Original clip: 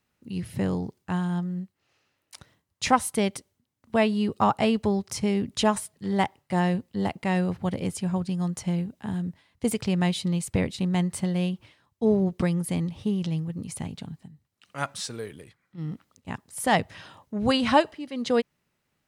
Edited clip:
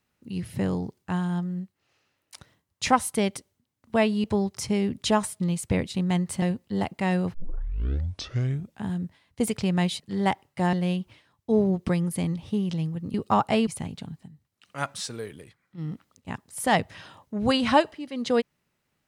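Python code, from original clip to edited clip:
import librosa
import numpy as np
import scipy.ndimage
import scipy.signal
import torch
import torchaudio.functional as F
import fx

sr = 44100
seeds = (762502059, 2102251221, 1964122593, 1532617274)

y = fx.edit(x, sr, fx.move(start_s=4.24, length_s=0.53, to_s=13.67),
    fx.swap(start_s=5.93, length_s=0.73, other_s=10.24, other_length_s=1.02),
    fx.tape_start(start_s=7.58, length_s=1.5), tone=tone)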